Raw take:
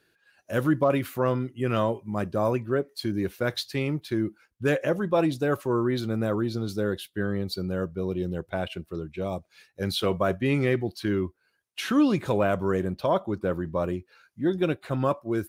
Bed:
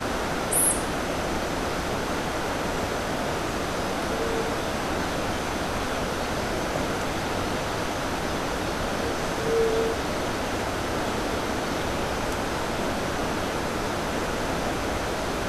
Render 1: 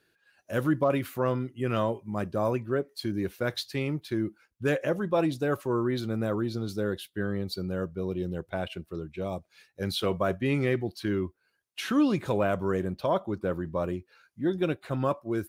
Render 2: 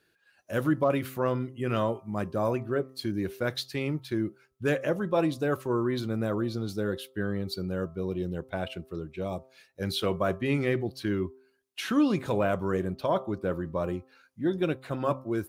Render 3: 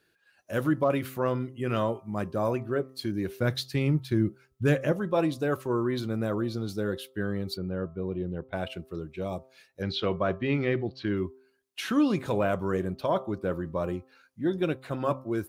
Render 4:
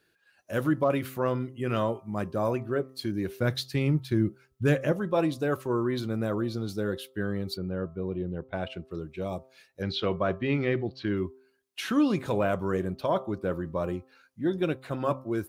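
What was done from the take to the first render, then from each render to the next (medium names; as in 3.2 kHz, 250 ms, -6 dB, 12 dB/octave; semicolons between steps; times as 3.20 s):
trim -2.5 dB
de-hum 131 Hz, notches 10
3.40–4.92 s: tone controls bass +9 dB, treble +1 dB; 7.57–8.53 s: distance through air 380 m; 9.82–11.17 s: low-pass 4.7 kHz 24 dB/octave
8.21–8.91 s: distance through air 78 m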